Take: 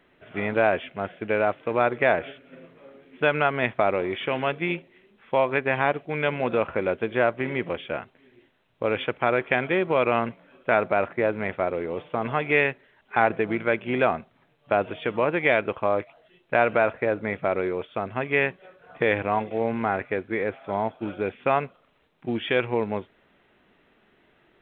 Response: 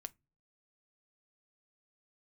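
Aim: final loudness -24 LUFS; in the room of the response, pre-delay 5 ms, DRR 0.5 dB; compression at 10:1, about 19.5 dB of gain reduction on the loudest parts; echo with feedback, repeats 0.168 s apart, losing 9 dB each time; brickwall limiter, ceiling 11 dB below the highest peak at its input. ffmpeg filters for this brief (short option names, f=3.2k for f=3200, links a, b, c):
-filter_complex "[0:a]acompressor=threshold=-36dB:ratio=10,alimiter=level_in=6dB:limit=-24dB:level=0:latency=1,volume=-6dB,aecho=1:1:168|336|504|672:0.355|0.124|0.0435|0.0152,asplit=2[a][b];[1:a]atrim=start_sample=2205,adelay=5[c];[b][c]afir=irnorm=-1:irlink=0,volume=4dB[d];[a][d]amix=inputs=2:normalize=0,volume=16.5dB"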